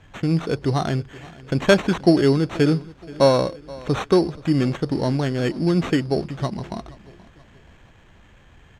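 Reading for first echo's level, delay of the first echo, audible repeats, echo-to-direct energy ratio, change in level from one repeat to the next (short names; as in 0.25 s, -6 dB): -21.0 dB, 0.477 s, 2, -20.0 dB, -7.0 dB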